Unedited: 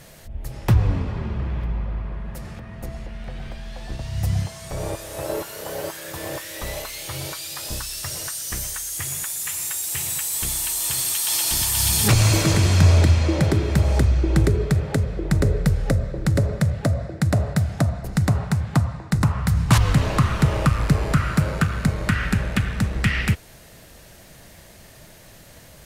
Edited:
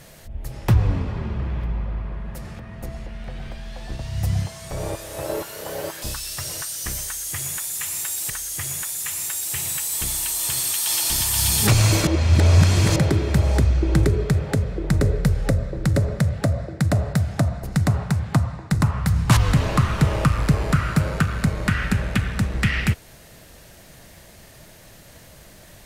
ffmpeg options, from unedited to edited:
-filter_complex "[0:a]asplit=5[s0][s1][s2][s3][s4];[s0]atrim=end=6.022[s5];[s1]atrim=start=7.678:end=9.962[s6];[s2]atrim=start=8.708:end=12.482[s7];[s3]atrim=start=12.478:end=13.372,asetpts=PTS-STARTPTS,areverse[s8];[s4]atrim=start=13.368[s9];[s5][s6]acrossfade=d=0.004:c1=hsin:c2=hsin[s10];[s10][s7]acrossfade=d=0.004:c1=hsin:c2=hsin[s11];[s11][s8]acrossfade=d=0.004:c1=hsin:c2=hsin[s12];[s12][s9]acrossfade=d=0.004:c1=hsin:c2=hsin"

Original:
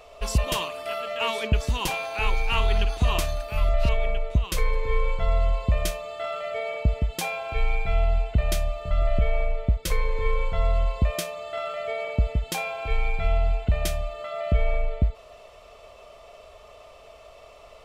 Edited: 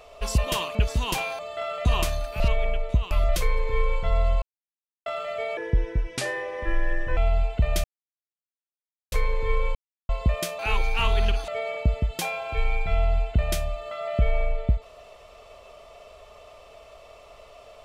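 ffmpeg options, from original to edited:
-filter_complex "[0:a]asplit=17[s0][s1][s2][s3][s4][s5][s6][s7][s8][s9][s10][s11][s12][s13][s14][s15][s16];[s0]atrim=end=0.752[s17];[s1]atrim=start=1.478:end=2.122[s18];[s2]atrim=start=11.348:end=11.812[s19];[s3]atrim=start=3.008:end=3.562[s20];[s4]atrim=start=3.808:end=4.522[s21];[s5]atrim=start=3.558:end=3.812[s22];[s6]atrim=start=4.518:end=5.58,asetpts=PTS-STARTPTS,afade=t=out:st=1.058:d=0.004:c=hsin[s23];[s7]atrim=start=5.58:end=6.22,asetpts=PTS-STARTPTS,volume=0[s24];[s8]atrim=start=6.22:end=6.734,asetpts=PTS-STARTPTS,afade=t=in:d=0.004:c=hsin[s25];[s9]atrim=start=6.73:end=7.93,asetpts=PTS-STARTPTS,asetrate=33075,aresample=44100[s26];[s10]atrim=start=7.926:end=8.6,asetpts=PTS-STARTPTS,afade=t=out:st=0.67:d=0.004:c=hsin[s27];[s11]atrim=start=8.6:end=9.88,asetpts=PTS-STARTPTS,volume=0[s28];[s12]atrim=start=9.88:end=10.51,asetpts=PTS-STARTPTS,afade=t=in:d=0.004:c=hsin,afade=t=out:st=0.626:d=0.004:c=hsin[s29];[s13]atrim=start=10.51:end=10.85,asetpts=PTS-STARTPTS,volume=0[s30];[s14]atrim=start=10.85:end=11.352,asetpts=PTS-STARTPTS,afade=t=in:d=0.004:c=hsin[s31];[s15]atrim=start=2.118:end=3.012[s32];[s16]atrim=start=11.808[s33];[s17][s18]acrossfade=d=0.004:c1=hsin:c2=hsin[s34];[s34][s19]acrossfade=d=0.004:c1=hsin:c2=hsin[s35];[s35][s20]acrossfade=d=0.004:c1=hsin:c2=hsin[s36];[s36][s21]acrossfade=d=0.004:c1=hsin:c2=hsin[s37];[s37][s22]acrossfade=d=0.004:c1=hsin:c2=hsin[s38];[s23][s24][s25]concat=n=3:v=0:a=1[s39];[s38][s39]acrossfade=d=0.004:c1=hsin:c2=hsin[s40];[s40][s26]acrossfade=d=0.004:c1=hsin:c2=hsin[s41];[s27][s28][s29][s30][s31]concat=n=5:v=0:a=1[s42];[s41][s42]acrossfade=d=0.004:c1=hsin:c2=hsin[s43];[s43][s32]acrossfade=d=0.004:c1=hsin:c2=hsin[s44];[s44][s33]acrossfade=d=0.004:c1=hsin:c2=hsin"

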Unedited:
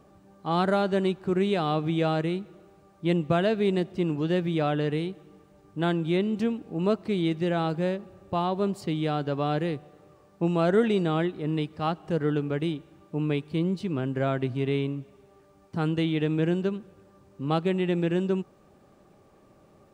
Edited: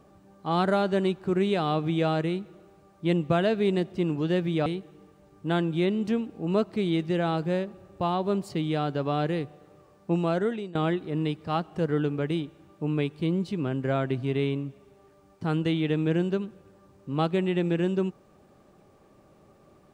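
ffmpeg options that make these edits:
-filter_complex "[0:a]asplit=3[s0][s1][s2];[s0]atrim=end=4.662[s3];[s1]atrim=start=4.978:end=11.07,asetpts=PTS-STARTPTS,afade=t=out:st=5.492:d=0.6:silence=0.1[s4];[s2]atrim=start=11.07,asetpts=PTS-STARTPTS,afade=t=in:d=0.004:c=hsin:silence=0.1[s5];[s4][s5]concat=n=2:v=0:a=1[s6];[s3][s6]acrossfade=d=0.004:c1=hsin:c2=hsin"

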